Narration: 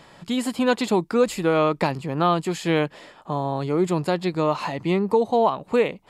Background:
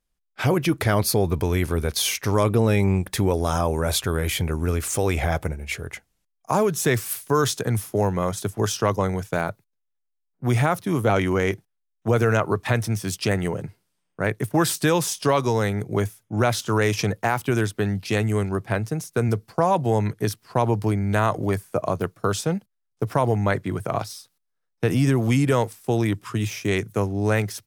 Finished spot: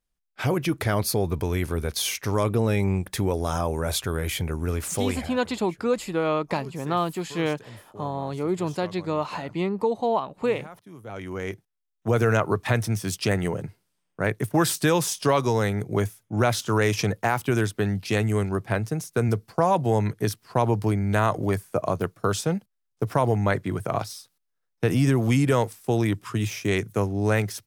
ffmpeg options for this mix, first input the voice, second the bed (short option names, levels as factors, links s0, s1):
-filter_complex "[0:a]adelay=4700,volume=0.596[s0];[1:a]volume=7.08,afade=t=out:st=5.02:d=0.3:silence=0.125893,afade=t=in:st=11.04:d=1.24:silence=0.0944061[s1];[s0][s1]amix=inputs=2:normalize=0"